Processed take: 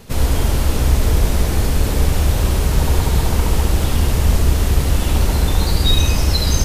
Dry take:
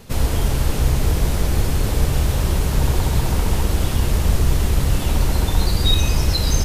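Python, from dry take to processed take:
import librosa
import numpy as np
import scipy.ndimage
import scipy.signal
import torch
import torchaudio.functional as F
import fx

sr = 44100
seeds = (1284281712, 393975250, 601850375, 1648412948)

y = x + 10.0 ** (-5.0 / 20.0) * np.pad(x, (int(71 * sr / 1000.0), 0))[:len(x)]
y = y * librosa.db_to_amplitude(1.5)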